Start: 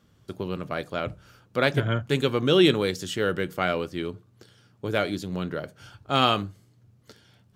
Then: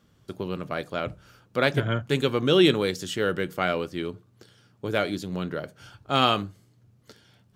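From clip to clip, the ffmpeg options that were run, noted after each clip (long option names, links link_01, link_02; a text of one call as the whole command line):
ffmpeg -i in.wav -af "equalizer=frequency=89:width_type=o:width=0.77:gain=-2.5" out.wav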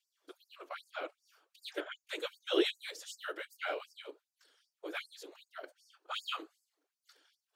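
ffmpeg -i in.wav -af "afftfilt=real='hypot(re,im)*cos(2*PI*random(0))':imag='hypot(re,im)*sin(2*PI*random(1))':win_size=512:overlap=0.75,afftfilt=real='re*gte(b*sr/1024,260*pow(4700/260,0.5+0.5*sin(2*PI*2.6*pts/sr)))':imag='im*gte(b*sr/1024,260*pow(4700/260,0.5+0.5*sin(2*PI*2.6*pts/sr)))':win_size=1024:overlap=0.75,volume=-4dB" out.wav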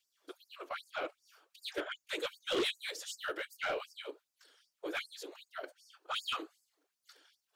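ffmpeg -i in.wav -af "asoftclip=type=tanh:threshold=-32.5dB,volume=4dB" out.wav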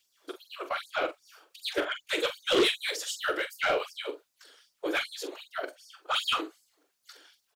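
ffmpeg -i in.wav -filter_complex "[0:a]asplit=2[link_01][link_02];[link_02]adelay=44,volume=-10dB[link_03];[link_01][link_03]amix=inputs=2:normalize=0,volume=8.5dB" out.wav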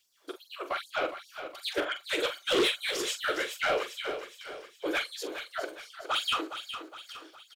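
ffmpeg -i in.wav -filter_complex "[0:a]asoftclip=type=tanh:threshold=-19.5dB,asplit=2[link_01][link_02];[link_02]aecho=0:1:413|826|1239|1652|2065:0.316|0.149|0.0699|0.0328|0.0154[link_03];[link_01][link_03]amix=inputs=2:normalize=0" out.wav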